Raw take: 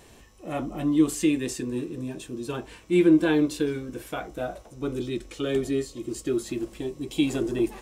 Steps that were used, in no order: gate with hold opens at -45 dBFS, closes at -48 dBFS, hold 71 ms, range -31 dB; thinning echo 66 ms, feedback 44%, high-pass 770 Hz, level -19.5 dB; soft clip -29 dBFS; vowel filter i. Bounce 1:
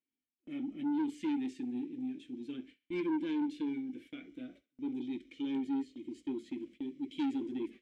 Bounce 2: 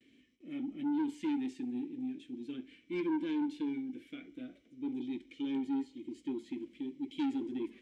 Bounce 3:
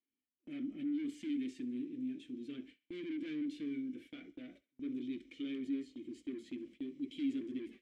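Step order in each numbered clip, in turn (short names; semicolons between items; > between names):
vowel filter > gate with hold > thinning echo > soft clip; gate with hold > vowel filter > soft clip > thinning echo; soft clip > vowel filter > gate with hold > thinning echo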